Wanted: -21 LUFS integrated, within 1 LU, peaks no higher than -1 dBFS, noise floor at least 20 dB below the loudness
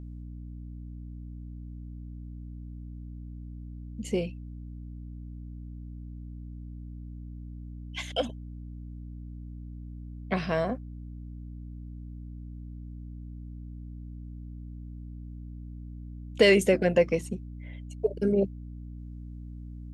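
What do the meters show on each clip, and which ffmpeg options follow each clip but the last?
hum 60 Hz; harmonics up to 300 Hz; hum level -38 dBFS; loudness -33.5 LUFS; peak -8.0 dBFS; loudness target -21.0 LUFS
-> -af "bandreject=f=60:t=h:w=6,bandreject=f=120:t=h:w=6,bandreject=f=180:t=h:w=6,bandreject=f=240:t=h:w=6,bandreject=f=300:t=h:w=6"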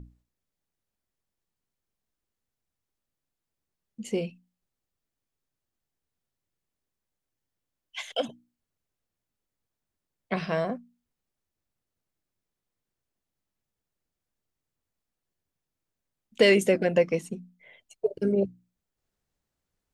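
hum none; loudness -26.5 LUFS; peak -8.0 dBFS; loudness target -21.0 LUFS
-> -af "volume=5.5dB"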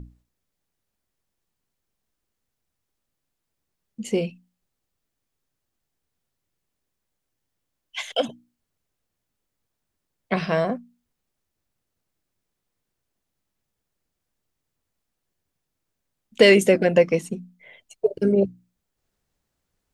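loudness -21.0 LUFS; peak -2.5 dBFS; noise floor -81 dBFS

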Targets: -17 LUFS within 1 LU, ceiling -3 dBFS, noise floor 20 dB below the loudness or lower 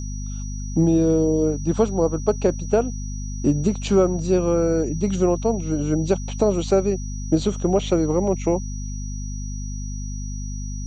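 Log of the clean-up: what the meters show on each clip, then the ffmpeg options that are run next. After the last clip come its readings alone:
hum 50 Hz; harmonics up to 250 Hz; hum level -27 dBFS; steady tone 5800 Hz; tone level -39 dBFS; loudness -22.5 LUFS; peak -5.5 dBFS; loudness target -17.0 LUFS
-> -af "bandreject=f=50:t=h:w=4,bandreject=f=100:t=h:w=4,bandreject=f=150:t=h:w=4,bandreject=f=200:t=h:w=4,bandreject=f=250:t=h:w=4"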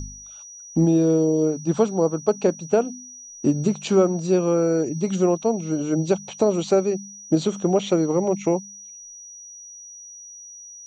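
hum none; steady tone 5800 Hz; tone level -39 dBFS
-> -af "bandreject=f=5.8k:w=30"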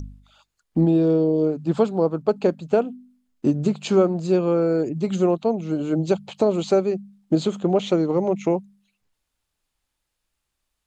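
steady tone none; loudness -22.0 LUFS; peak -6.0 dBFS; loudness target -17.0 LUFS
-> -af "volume=5dB,alimiter=limit=-3dB:level=0:latency=1"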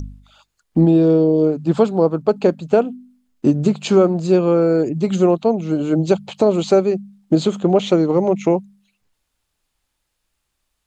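loudness -17.0 LUFS; peak -3.0 dBFS; noise floor -74 dBFS

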